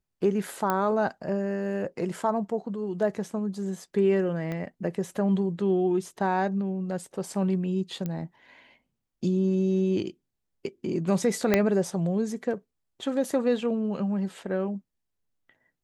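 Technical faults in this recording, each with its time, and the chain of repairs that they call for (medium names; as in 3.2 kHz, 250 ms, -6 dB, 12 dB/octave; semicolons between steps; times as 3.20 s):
0.70 s: pop -12 dBFS
4.52 s: pop -21 dBFS
8.06 s: pop -19 dBFS
11.54 s: pop -7 dBFS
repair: de-click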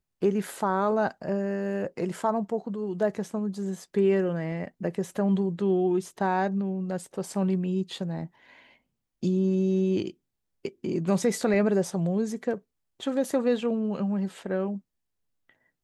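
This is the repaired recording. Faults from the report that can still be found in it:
4.52 s: pop
11.54 s: pop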